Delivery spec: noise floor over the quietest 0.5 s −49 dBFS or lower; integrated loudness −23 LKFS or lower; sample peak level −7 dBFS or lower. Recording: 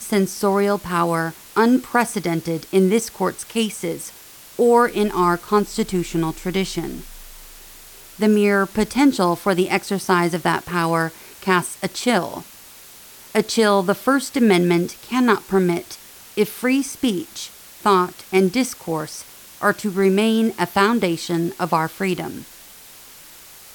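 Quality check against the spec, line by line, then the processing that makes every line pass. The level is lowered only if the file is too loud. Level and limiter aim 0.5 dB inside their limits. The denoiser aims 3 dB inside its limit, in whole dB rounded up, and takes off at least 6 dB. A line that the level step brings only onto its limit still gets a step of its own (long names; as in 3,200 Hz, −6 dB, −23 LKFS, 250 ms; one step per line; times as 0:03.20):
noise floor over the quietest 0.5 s −43 dBFS: out of spec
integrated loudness −20.0 LKFS: out of spec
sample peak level −4.0 dBFS: out of spec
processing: broadband denoise 6 dB, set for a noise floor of −43 dBFS
level −3.5 dB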